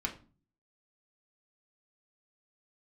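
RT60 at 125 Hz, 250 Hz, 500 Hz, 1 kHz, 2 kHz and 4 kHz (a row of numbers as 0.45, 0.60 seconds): 0.70, 0.60, 0.40, 0.35, 0.30, 0.25 seconds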